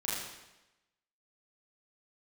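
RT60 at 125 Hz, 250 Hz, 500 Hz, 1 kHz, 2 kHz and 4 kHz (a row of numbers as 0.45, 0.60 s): 0.90, 1.0, 1.0, 1.0, 1.0, 0.95 s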